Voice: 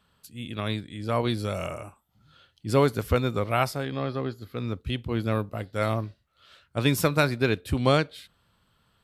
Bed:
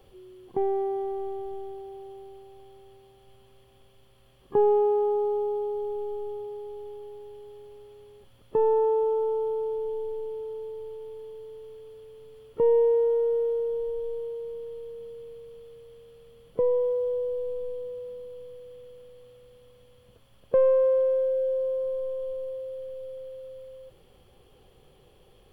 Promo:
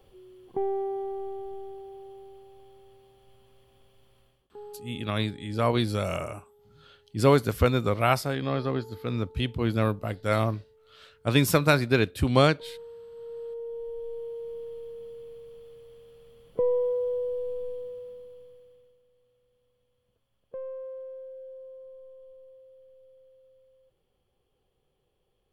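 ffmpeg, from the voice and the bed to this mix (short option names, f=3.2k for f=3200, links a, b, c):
-filter_complex "[0:a]adelay=4500,volume=1.5dB[a];[1:a]volume=19.5dB,afade=t=out:st=4.19:d=0.3:silence=0.0944061,afade=t=in:st=13.11:d=1.47:silence=0.0794328,afade=t=out:st=17.67:d=1.33:silence=0.149624[b];[a][b]amix=inputs=2:normalize=0"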